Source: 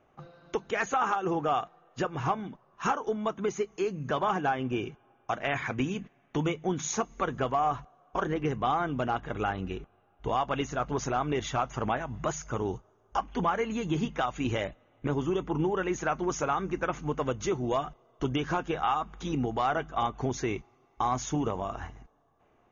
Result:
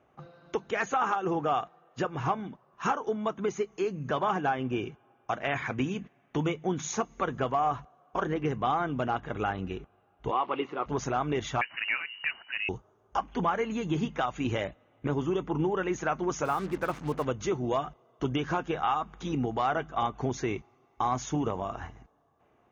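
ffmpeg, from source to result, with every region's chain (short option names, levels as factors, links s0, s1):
-filter_complex "[0:a]asettb=1/sr,asplit=3[s0][s1][s2];[s0]atrim=end=10.314[s3];[s1]atrim=start=10.31:end=10.86,asetpts=PTS-STARTPTS,afade=t=in:d=0.004:c=qsin,afade=t=out:st=0.546:d=0.004:c=qsin,aeval=exprs='val(0)+0.5*0.0075*sgn(val(0))':c=same,highpass=340,equalizer=f=360:t=q:w=4:g=8,equalizer=f=650:t=q:w=4:g=-4,equalizer=f=1100:t=q:w=4:g=4,equalizer=f=1600:t=q:w=4:g=-10,lowpass=f=3100:w=0.5412,lowpass=f=3100:w=1.3066,bandreject=f=650:w=10[s4];[s2]atrim=start=10.856[s5];[s3][s4]acrossfade=d=0.004:c1=hsin:c2=qsin[s6];[s6][s5]acrossfade=d=0.004:c1=qsin:c2=hsin,asettb=1/sr,asplit=3[s7][s8][s9];[s7]atrim=end=11.614[s10];[s8]atrim=start=11.61:end=12.69,asetpts=PTS-STARTPTS,afade=t=in:d=0.004:c=qsin,afade=t=out:st=1.076:d=0.004:c=qsin,equalizer=f=69:t=o:w=1.9:g=-11.5,lowpass=f=2600:t=q:w=0.5098,lowpass=f=2600:t=q:w=0.6013,lowpass=f=2600:t=q:w=0.9,lowpass=f=2600:t=q:w=2.563,afreqshift=-3000[s11];[s9]atrim=start=12.686[s12];[s10][s11]acrossfade=d=0.004:c1=hsin:c2=qsin[s13];[s13][s12]acrossfade=d=0.004:c1=qsin:c2=hsin,asettb=1/sr,asplit=3[s14][s15][s16];[s14]atrim=end=16.454[s17];[s15]atrim=start=16.45:end=17.25,asetpts=PTS-STARTPTS,afade=t=in:d=0.004:c=qsin,afade=t=out:st=0.796:d=0.004:c=qsin,aemphasis=mode=reproduction:type=50kf,acrusher=bits=6:mix=0:aa=0.5[s18];[s16]atrim=start=17.246[s19];[s17][s18]acrossfade=d=0.004:c1=hsin:c2=qsin[s20];[s20][s19]acrossfade=d=0.004:c1=qsin:c2=hsin,highpass=55,highshelf=f=5700:g=-4.5"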